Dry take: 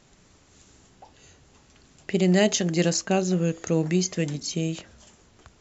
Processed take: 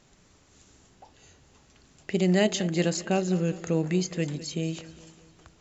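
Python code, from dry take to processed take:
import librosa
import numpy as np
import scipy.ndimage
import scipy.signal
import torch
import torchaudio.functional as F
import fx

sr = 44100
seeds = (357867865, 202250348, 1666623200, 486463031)

y = fx.peak_eq(x, sr, hz=5800.0, db=-8.5, octaves=0.34, at=(2.34, 4.72))
y = fx.echo_feedback(y, sr, ms=203, feedback_pct=53, wet_db=-17)
y = F.gain(torch.from_numpy(y), -2.5).numpy()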